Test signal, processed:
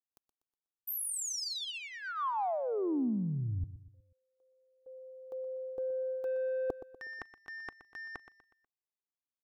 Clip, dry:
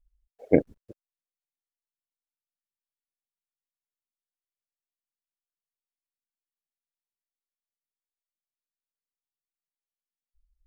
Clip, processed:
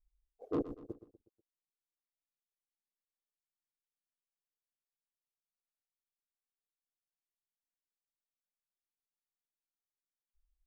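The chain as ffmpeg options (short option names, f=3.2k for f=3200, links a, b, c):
-filter_complex "[0:a]agate=range=-11dB:threshold=-53dB:ratio=16:detection=peak,highshelf=f=2.2k:g=-8,aecho=1:1:2.6:0.39,asoftclip=type=tanh:threshold=-21dB,areverse,acompressor=threshold=-34dB:ratio=6,areverse,equalizer=f=250:t=o:w=1:g=4,equalizer=f=1k:t=o:w=1:g=5,equalizer=f=2k:t=o:w=1:g=-12,asplit=2[a][b];[b]aecho=0:1:122|244|366|488:0.211|0.093|0.0409|0.018[c];[a][c]amix=inputs=2:normalize=0"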